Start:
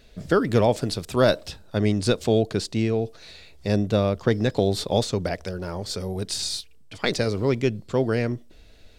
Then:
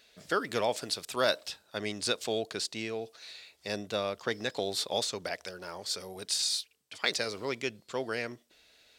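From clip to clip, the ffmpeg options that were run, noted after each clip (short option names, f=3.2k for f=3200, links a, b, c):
-af "highpass=f=1.4k:p=1,volume=-1dB"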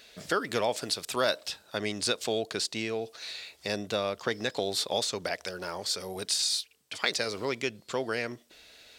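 -af "acompressor=threshold=-44dB:ratio=1.5,volume=8dB"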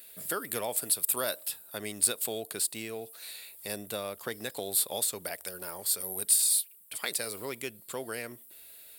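-filter_complex "[0:a]aexciter=amount=15.4:drive=7:freq=8.9k,asplit=2[a][b];[b]acrusher=bits=4:mode=log:mix=0:aa=0.000001,volume=-11dB[c];[a][c]amix=inputs=2:normalize=0,volume=-8.5dB"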